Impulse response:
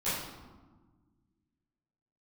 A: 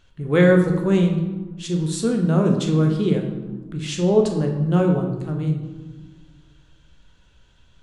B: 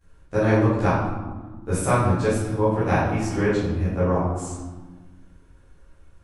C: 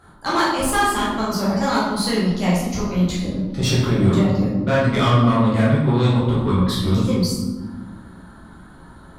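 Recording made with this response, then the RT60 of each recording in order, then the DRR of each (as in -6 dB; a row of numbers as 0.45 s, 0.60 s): B; 1.4 s, 1.4 s, 1.4 s; 2.0 dB, -15.5 dB, -8.0 dB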